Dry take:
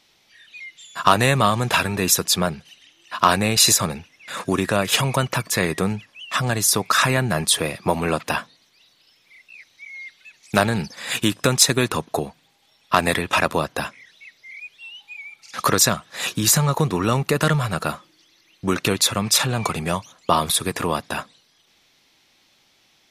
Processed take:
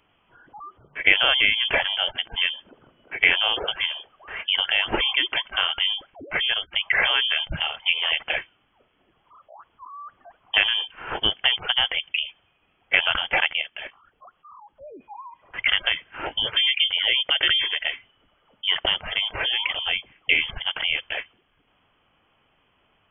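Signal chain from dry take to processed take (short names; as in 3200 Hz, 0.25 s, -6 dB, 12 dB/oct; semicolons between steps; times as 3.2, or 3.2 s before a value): spectral gate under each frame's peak -30 dB strong; inverted band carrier 3300 Hz; 13.53–14.78 level quantiser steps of 11 dB; gain -2 dB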